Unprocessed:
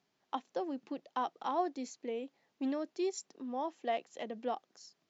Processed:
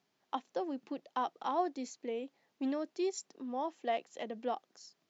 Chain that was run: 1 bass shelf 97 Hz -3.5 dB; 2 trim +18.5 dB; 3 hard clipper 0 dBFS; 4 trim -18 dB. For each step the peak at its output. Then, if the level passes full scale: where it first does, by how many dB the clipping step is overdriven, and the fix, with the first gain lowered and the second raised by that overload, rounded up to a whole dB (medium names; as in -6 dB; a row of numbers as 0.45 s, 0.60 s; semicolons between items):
-22.0 dBFS, -3.5 dBFS, -3.5 dBFS, -21.5 dBFS; nothing clips